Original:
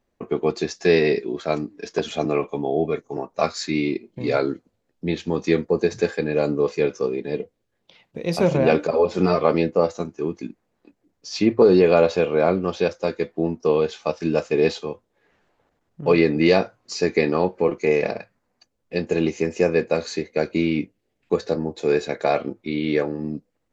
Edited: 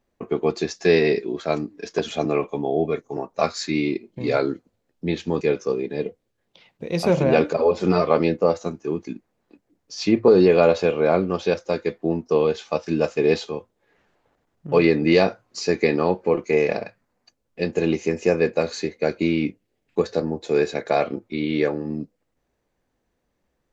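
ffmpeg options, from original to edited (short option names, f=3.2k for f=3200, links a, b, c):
-filter_complex "[0:a]asplit=2[a][b];[a]atrim=end=5.412[c];[b]atrim=start=6.748[d];[c][d]acrossfade=d=0.004:c1=hsin:c2=hsin"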